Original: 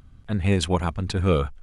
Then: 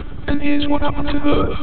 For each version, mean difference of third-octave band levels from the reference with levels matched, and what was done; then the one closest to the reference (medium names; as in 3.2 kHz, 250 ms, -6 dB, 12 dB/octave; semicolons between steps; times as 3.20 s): 9.0 dB: monotone LPC vocoder at 8 kHz 290 Hz; on a send: echo whose repeats swap between lows and highs 113 ms, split 1 kHz, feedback 66%, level -6.5 dB; on the sum: three bands compressed up and down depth 70%; trim +6.5 dB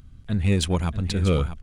2.5 dB: peaking EQ 900 Hz -7.5 dB 2.3 oct; in parallel at -7.5 dB: hard clipper -26 dBFS, distortion -6 dB; on the sum: delay 641 ms -11 dB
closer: second